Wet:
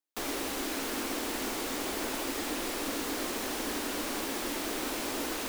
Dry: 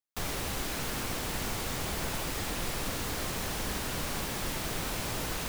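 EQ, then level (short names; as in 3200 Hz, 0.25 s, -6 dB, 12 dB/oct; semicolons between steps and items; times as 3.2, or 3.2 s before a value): resonant low shelf 200 Hz -11.5 dB, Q 3; 0.0 dB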